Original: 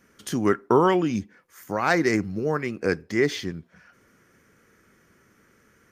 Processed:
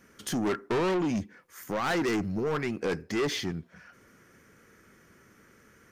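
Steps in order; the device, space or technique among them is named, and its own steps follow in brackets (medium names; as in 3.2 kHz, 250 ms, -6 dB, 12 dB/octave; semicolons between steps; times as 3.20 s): saturation between pre-emphasis and de-emphasis (treble shelf 10 kHz +6 dB; saturation -26 dBFS, distortion -6 dB; treble shelf 10 kHz -6 dB); trim +1.5 dB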